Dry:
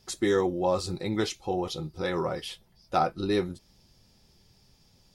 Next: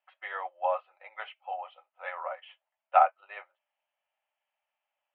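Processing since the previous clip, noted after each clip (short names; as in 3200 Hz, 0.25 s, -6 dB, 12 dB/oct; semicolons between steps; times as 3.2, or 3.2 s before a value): Chebyshev band-pass 580–3000 Hz, order 5; upward expander 1.5:1, over -58 dBFS; gain +5.5 dB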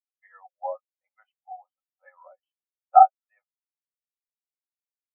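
in parallel at -1 dB: compressor, threshold -35 dBFS, peak gain reduction 18 dB; on the sum: spectral expander 2.5:1; gain +4 dB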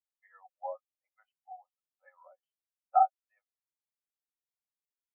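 limiter -7 dBFS, peak gain reduction 4.5 dB; gain -7 dB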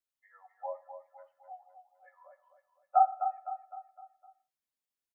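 on a send: feedback echo 0.255 s, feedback 46%, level -9 dB; on the sum: non-linear reverb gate 0.21 s falling, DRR 11 dB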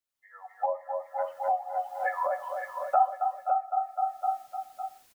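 recorder AGC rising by 27 dB/s; echo 0.557 s -7 dB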